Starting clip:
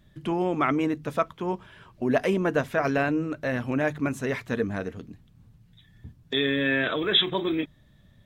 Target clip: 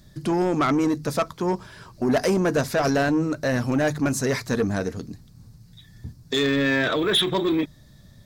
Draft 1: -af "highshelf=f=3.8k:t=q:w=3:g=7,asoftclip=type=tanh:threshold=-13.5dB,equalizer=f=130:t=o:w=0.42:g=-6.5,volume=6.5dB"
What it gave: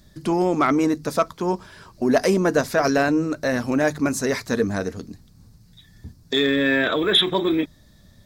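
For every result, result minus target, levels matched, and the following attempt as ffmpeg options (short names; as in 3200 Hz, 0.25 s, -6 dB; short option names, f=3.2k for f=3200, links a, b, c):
soft clip: distortion -11 dB; 125 Hz band -4.5 dB
-af "highshelf=f=3.8k:t=q:w=3:g=7,asoftclip=type=tanh:threshold=-22dB,equalizer=f=130:t=o:w=0.42:g=-6.5,volume=6.5dB"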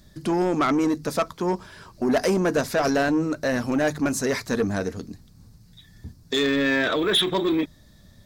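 125 Hz band -4.0 dB
-af "highshelf=f=3.8k:t=q:w=3:g=7,asoftclip=type=tanh:threshold=-22dB,equalizer=f=130:t=o:w=0.42:g=2,volume=6.5dB"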